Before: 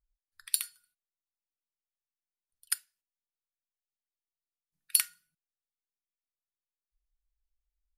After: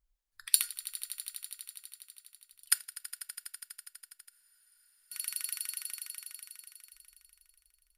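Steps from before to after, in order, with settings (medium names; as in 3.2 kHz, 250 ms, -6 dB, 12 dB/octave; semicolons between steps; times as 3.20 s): echo with a slow build-up 82 ms, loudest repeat 5, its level -17.5 dB; spectral freeze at 4.31 s, 0.81 s; trim +4 dB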